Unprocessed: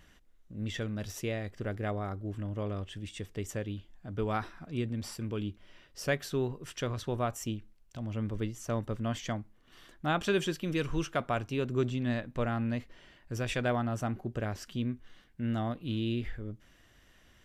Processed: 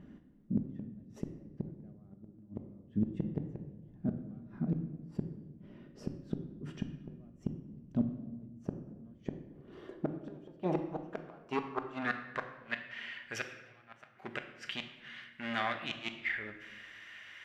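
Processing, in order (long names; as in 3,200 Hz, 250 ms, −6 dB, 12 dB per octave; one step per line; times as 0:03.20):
gain into a clipping stage and back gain 31 dB
band-pass filter sweep 230 Hz → 2,100 Hz, 0:08.93–0:12.83
gate with flip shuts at −38 dBFS, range −34 dB
on a send: convolution reverb RT60 1.2 s, pre-delay 5 ms, DRR 6 dB
on the sum: level +17.5 dB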